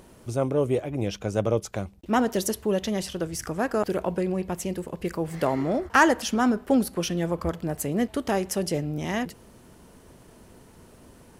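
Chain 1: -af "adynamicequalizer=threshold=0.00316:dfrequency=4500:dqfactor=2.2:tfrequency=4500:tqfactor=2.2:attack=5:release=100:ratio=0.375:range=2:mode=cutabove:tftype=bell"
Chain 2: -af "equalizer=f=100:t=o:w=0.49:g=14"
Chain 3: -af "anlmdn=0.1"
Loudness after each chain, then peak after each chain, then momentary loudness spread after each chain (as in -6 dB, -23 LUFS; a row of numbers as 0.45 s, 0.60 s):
-26.5 LUFS, -25.5 LUFS, -26.5 LUFS; -5.0 dBFS, -5.0 dBFS, -5.0 dBFS; 9 LU, 9 LU, 9 LU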